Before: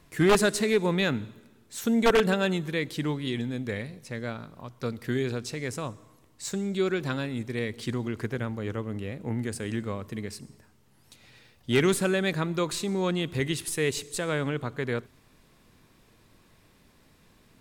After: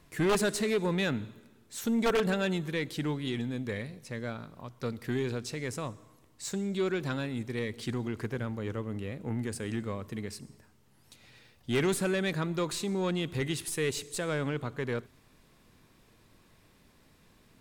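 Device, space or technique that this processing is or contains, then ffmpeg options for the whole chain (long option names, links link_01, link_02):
saturation between pre-emphasis and de-emphasis: -af "highshelf=frequency=4100:gain=6.5,asoftclip=type=tanh:threshold=-19.5dB,highshelf=frequency=4100:gain=-6.5,volume=-2dB"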